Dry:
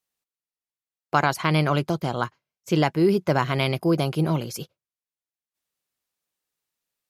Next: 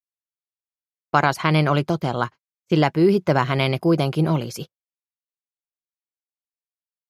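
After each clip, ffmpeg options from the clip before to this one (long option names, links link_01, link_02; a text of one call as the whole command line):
ffmpeg -i in.wav -af "agate=range=-31dB:threshold=-37dB:ratio=16:detection=peak,highshelf=frequency=7800:gain=-8,volume=3dB" out.wav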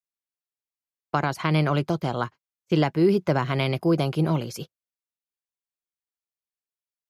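ffmpeg -i in.wav -filter_complex "[0:a]acrossover=split=450[link_01][link_02];[link_02]acompressor=threshold=-20dB:ratio=3[link_03];[link_01][link_03]amix=inputs=2:normalize=0,volume=-3dB" out.wav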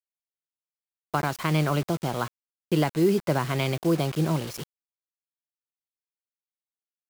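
ffmpeg -i in.wav -af "acrusher=bits=5:mix=0:aa=0.000001,volume=-2dB" out.wav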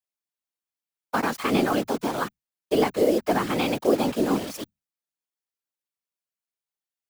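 ffmpeg -i in.wav -af "afreqshift=120,afftfilt=real='hypot(re,im)*cos(2*PI*random(0))':imag='hypot(re,im)*sin(2*PI*random(1))':win_size=512:overlap=0.75,volume=7.5dB" out.wav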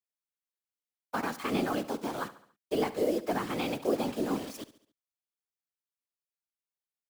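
ffmpeg -i in.wav -af "aecho=1:1:70|140|210|280:0.158|0.0777|0.0381|0.0186,volume=-8dB" out.wav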